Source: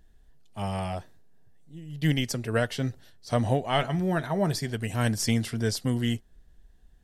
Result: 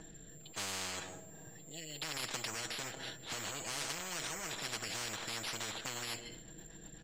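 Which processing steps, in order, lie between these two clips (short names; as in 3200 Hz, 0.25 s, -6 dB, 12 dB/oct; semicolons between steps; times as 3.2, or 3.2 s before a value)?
de-esser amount 80%; bell 4200 Hz +12.5 dB 1.4 oct; comb 6.2 ms, depth 63%; limiter -20 dBFS, peak gain reduction 13.5 dB; soft clip -26.5 dBFS, distortion -13 dB; rotary speaker horn 1.2 Hz, later 8 Hz, at 4.52; on a send at -20.5 dB: reverb, pre-delay 0.141 s; on the sum: careless resampling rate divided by 6×, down filtered, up zero stuff; tape spacing loss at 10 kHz 33 dB; spectral compressor 10:1; gain +4.5 dB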